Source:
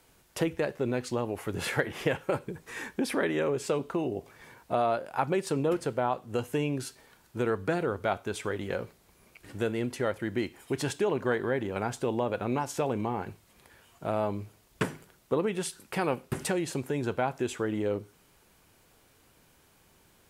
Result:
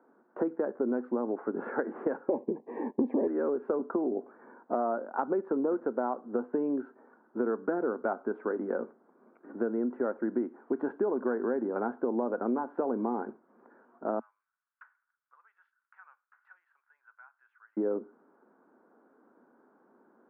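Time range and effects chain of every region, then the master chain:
2.28–3.28 sample leveller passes 2 + Butterworth band-stop 1400 Hz, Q 1.2
14.19–17.77 HPF 1300 Hz 24 dB/oct + differentiator
whole clip: Chebyshev band-pass 230–1500 Hz, order 4; low shelf 320 Hz +10.5 dB; compressor 4:1, threshold -26 dBFS

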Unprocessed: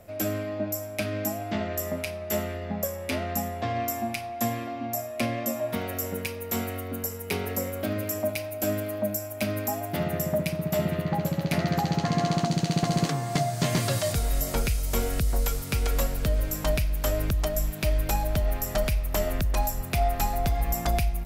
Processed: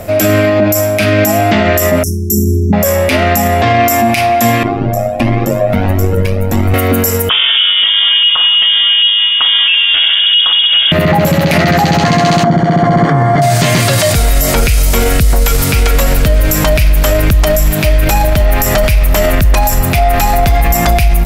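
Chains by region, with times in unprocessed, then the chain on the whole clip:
2.03–2.73 brick-wall FIR band-stop 430–5300 Hz + doubler 25 ms -14 dB
4.63–6.74 tilt -3 dB/oct + AM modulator 100 Hz, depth 70% + cascading flanger rising 1.5 Hz
7.29–10.92 HPF 140 Hz 6 dB/oct + air absorption 460 m + inverted band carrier 3500 Hz
12.44–13.42 polynomial smoothing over 41 samples + compressor 3:1, threshold -26 dBFS
whole clip: dynamic EQ 2200 Hz, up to +5 dB, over -46 dBFS, Q 0.88; maximiser +26 dB; gain -1 dB

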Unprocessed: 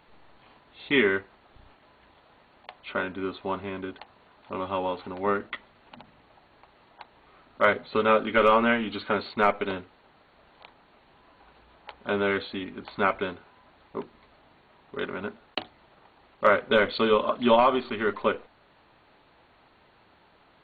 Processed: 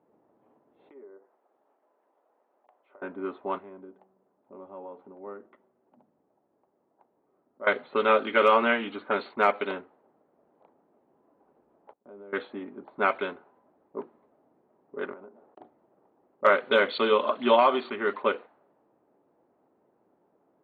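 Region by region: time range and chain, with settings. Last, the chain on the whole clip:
0.89–3.02 treble ducked by the level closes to 850 Hz, closed at -21 dBFS + HPF 570 Hz + compressor 20:1, threshold -41 dBFS
3.58–7.67 compressor 1.5:1, threshold -37 dBFS + resonator 190 Hz, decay 1.5 s, mix 50%
11.93–12.33 gate -50 dBFS, range -20 dB + compressor 2.5:1, threshold -48 dBFS
15.13–15.61 bell 680 Hz +7 dB 2.7 oct + compressor 10:1, threshold -40 dBFS
whole clip: HPF 280 Hz 12 dB/oct; low-pass opened by the level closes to 440 Hz, open at -19.5 dBFS

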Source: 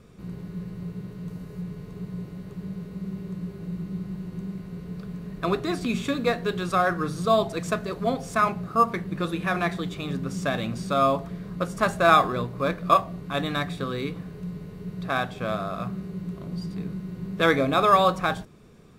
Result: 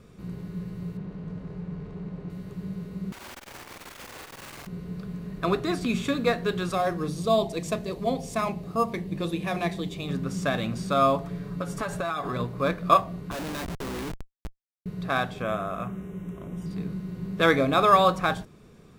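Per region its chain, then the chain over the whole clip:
0.97–2.3 G.711 law mismatch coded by mu + tape spacing loss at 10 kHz 20 dB + notches 60/120/180/240/300/360/420 Hz
3.12–4.67 wrapped overs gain 39.5 dB + flutter echo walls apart 8.2 m, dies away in 1.2 s + core saturation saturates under 390 Hz
6.73–10.09 bell 1400 Hz -13.5 dB 0.61 oct + notches 60/120/180/240/300/360/420 Hz
11.24–12.4 comb 7 ms, depth 51% + compressor 16:1, threshold -25 dBFS
13.31–14.86 Chebyshev high-pass 190 Hz, order 5 + Schmitt trigger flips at -32.5 dBFS
15.42–16.66 Butterworth band-stop 4500 Hz, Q 1.8 + bell 150 Hz -5.5 dB 0.63 oct
whole clip: dry

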